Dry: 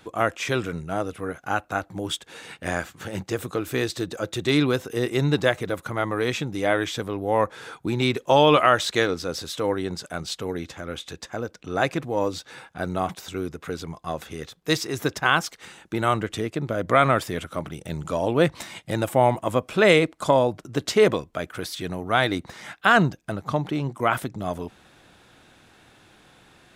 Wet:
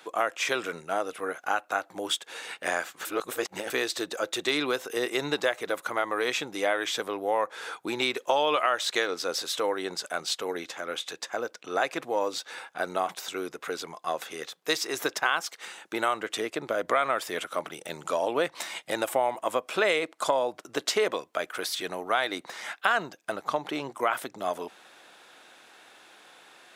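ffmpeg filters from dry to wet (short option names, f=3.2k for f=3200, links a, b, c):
-filter_complex "[0:a]asplit=3[a][b][c];[a]atrim=end=3.052[d];[b]atrim=start=3.048:end=3.702,asetpts=PTS-STARTPTS,areverse[e];[c]atrim=start=3.698[f];[d][e]acrossfade=d=0.004:c1=hsin:c2=hsin[g];[g][f]acrossfade=d=0.004:c1=hsin:c2=hsin,highpass=490,acompressor=threshold=-26dB:ratio=3,volume=2.5dB"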